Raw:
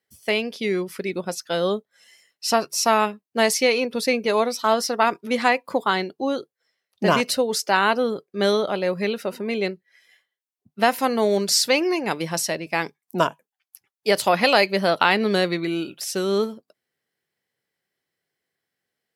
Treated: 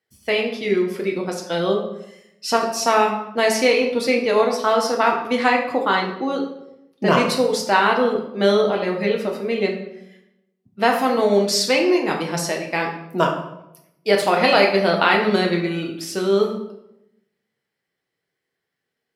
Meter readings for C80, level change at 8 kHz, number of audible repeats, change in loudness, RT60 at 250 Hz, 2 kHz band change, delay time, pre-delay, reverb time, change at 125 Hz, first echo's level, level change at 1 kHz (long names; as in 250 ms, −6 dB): 9.0 dB, −2.5 dB, no echo audible, +2.5 dB, 1.0 s, +2.0 dB, no echo audible, 6 ms, 0.85 s, +3.5 dB, no echo audible, +2.5 dB